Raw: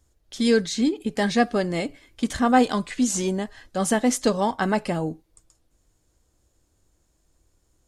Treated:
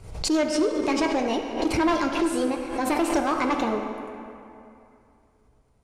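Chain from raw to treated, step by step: notch 1300 Hz, Q 8.4; hard clip -19.5 dBFS, distortion -9 dB; air absorption 140 m; plate-style reverb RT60 3.6 s, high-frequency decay 0.55×, DRR 4 dB; speed mistake 33 rpm record played at 45 rpm; backwards sustainer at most 81 dB/s

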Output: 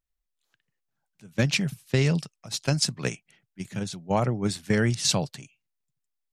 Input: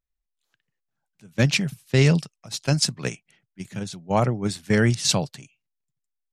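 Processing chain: compressor 3:1, threshold -20 dBFS, peak gain reduction 6 dB

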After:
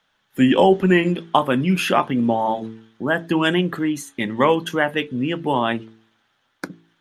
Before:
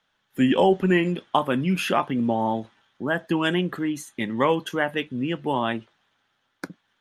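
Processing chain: de-hum 55.82 Hz, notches 8; gain +4.5 dB

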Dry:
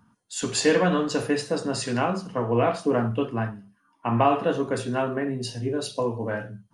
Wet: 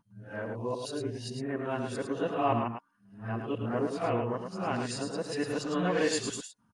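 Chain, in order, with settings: whole clip reversed; on a send: echo 0.107 s -6 dB; on the sum: gain -8 dB

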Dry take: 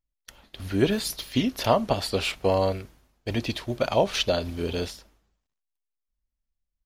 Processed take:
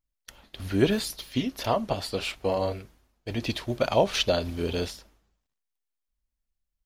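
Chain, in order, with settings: 1.05–3.42 flange 1.5 Hz, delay 2.3 ms, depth 5.9 ms, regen -51%

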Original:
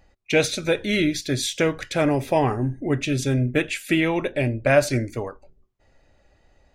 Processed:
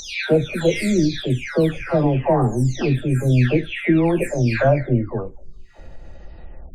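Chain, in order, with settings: spectral delay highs early, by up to 0.61 s; upward compressor, threshold -35 dBFS; tilt -2 dB/oct; gain +2.5 dB

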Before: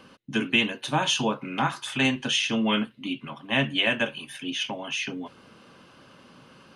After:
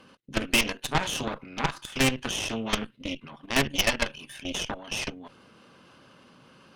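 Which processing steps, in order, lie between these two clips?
level quantiser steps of 11 dB; added harmonics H 8 -11 dB, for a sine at -10.5 dBFS

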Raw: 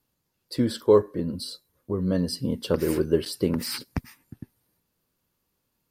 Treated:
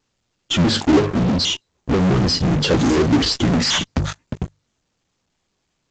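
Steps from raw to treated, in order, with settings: trilling pitch shifter -6 st, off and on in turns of 0.161 s; notches 50/100/150 Hz; vibrato 1 Hz 14 cents; in parallel at -4.5 dB: fuzz box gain 44 dB, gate -50 dBFS; on the sum: A-law 128 kbps 16000 Hz

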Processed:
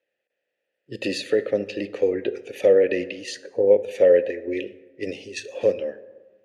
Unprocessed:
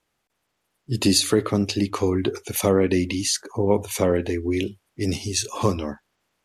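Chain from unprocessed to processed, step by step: in parallel at +1 dB: level quantiser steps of 23 dB; on the sum: vowel filter e; plate-style reverb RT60 1.4 s, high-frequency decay 0.45×, DRR 14 dB; gain +6.5 dB

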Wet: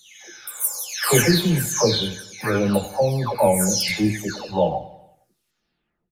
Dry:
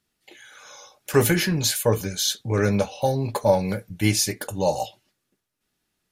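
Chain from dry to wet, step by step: spectral delay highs early, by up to 0.608 s; feedback echo 92 ms, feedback 52%, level -15.5 dB; gain +4.5 dB

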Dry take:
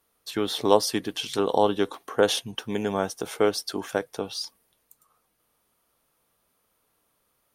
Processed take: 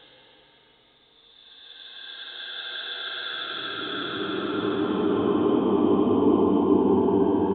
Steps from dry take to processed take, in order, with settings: downsampling 8000 Hz; Paulstretch 42×, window 0.10 s, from 3.62; gain +8 dB

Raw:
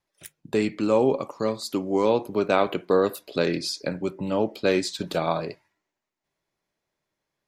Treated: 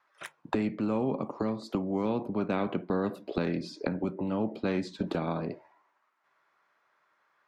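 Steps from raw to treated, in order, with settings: auto-wah 210–1300 Hz, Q 3.1, down, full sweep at -25 dBFS; spectral compressor 2:1; gain +4 dB

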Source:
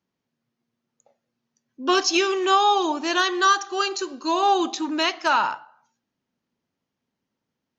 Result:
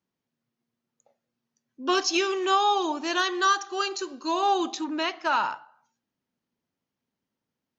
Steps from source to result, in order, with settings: 4.84–5.33 high shelf 5100 Hz -11.5 dB; gain -4 dB

